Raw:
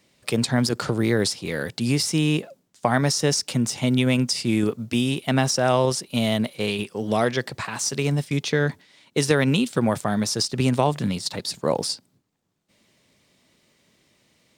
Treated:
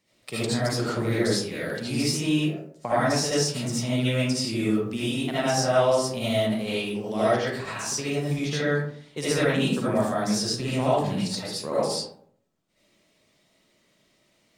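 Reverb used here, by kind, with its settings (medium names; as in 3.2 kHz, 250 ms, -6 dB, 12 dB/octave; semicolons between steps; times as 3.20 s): algorithmic reverb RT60 0.63 s, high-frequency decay 0.45×, pre-delay 35 ms, DRR -9.5 dB; trim -11.5 dB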